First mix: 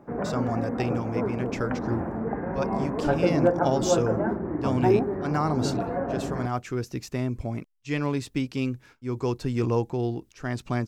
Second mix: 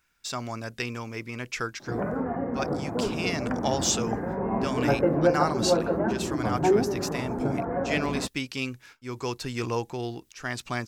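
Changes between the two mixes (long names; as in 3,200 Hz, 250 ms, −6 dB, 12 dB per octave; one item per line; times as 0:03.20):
speech: add tilt shelving filter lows −7.5 dB, about 880 Hz
background: entry +1.80 s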